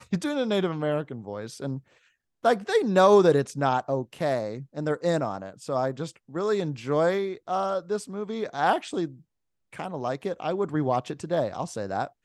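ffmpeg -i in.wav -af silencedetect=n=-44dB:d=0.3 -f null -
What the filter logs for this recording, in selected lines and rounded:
silence_start: 1.79
silence_end: 2.44 | silence_duration: 0.64
silence_start: 9.17
silence_end: 9.73 | silence_duration: 0.56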